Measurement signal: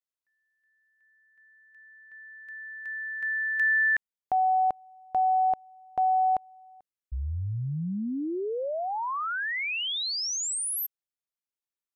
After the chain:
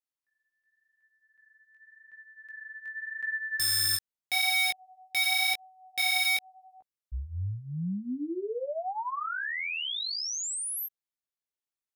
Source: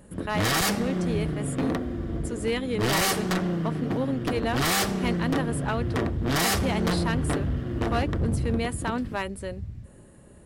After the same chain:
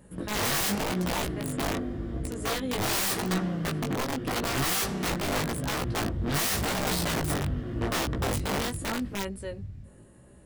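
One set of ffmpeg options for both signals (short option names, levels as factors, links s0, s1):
-af "aeval=exprs='(mod(10.6*val(0)+1,2)-1)/10.6':c=same,flanger=delay=15.5:depth=5.4:speed=0.87"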